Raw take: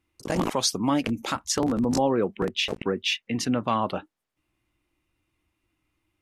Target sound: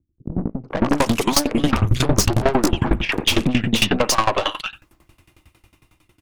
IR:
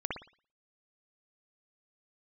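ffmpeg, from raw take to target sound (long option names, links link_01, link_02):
-filter_complex "[0:a]acrossover=split=300|2000[link_01][link_02][link_03];[link_02]adelay=450[link_04];[link_03]adelay=700[link_05];[link_01][link_04][link_05]amix=inputs=3:normalize=0,asplit=3[link_06][link_07][link_08];[link_06]afade=type=out:start_time=1.74:duration=0.02[link_09];[link_07]afreqshift=-140,afade=type=in:start_time=1.74:duration=0.02,afade=type=out:start_time=3.41:duration=0.02[link_10];[link_08]afade=type=in:start_time=3.41:duration=0.02[link_11];[link_09][link_10][link_11]amix=inputs=3:normalize=0,aeval=exprs='(tanh(31.6*val(0)+0.55)-tanh(0.55))/31.6':channel_layout=same,dynaudnorm=framelen=370:gausssize=7:maxgain=14.5dB,asplit=2[link_12][link_13];[1:a]atrim=start_sample=2205,afade=type=out:start_time=0.18:duration=0.01,atrim=end_sample=8379[link_14];[link_13][link_14]afir=irnorm=-1:irlink=0,volume=-17.5dB[link_15];[link_12][link_15]amix=inputs=2:normalize=0,alimiter=level_in=19dB:limit=-1dB:release=50:level=0:latency=1,aeval=exprs='val(0)*pow(10,-20*if(lt(mod(11*n/s,1),2*abs(11)/1000),1-mod(11*n/s,1)/(2*abs(11)/1000),(mod(11*n/s,1)-2*abs(11)/1000)/(1-2*abs(11)/1000))/20)':channel_layout=same,volume=-3.5dB"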